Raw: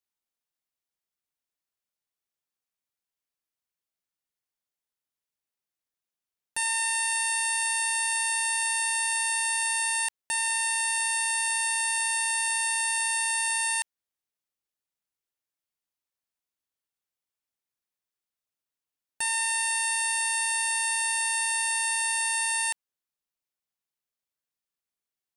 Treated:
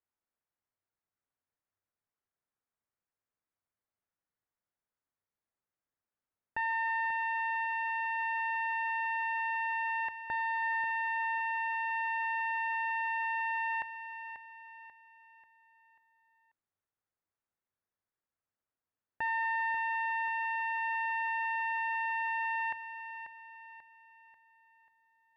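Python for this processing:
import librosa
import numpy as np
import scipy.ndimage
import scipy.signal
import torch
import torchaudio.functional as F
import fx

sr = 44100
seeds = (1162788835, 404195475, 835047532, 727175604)

y = scipy.signal.sosfilt(scipy.signal.butter(4, 1900.0, 'lowpass', fs=sr, output='sos'), x)
y = fx.peak_eq(y, sr, hz=96.0, db=8.5, octaves=0.23)
y = fx.echo_feedback(y, sr, ms=539, feedback_pct=43, wet_db=-10)
y = F.gain(torch.from_numpy(y), 1.5).numpy()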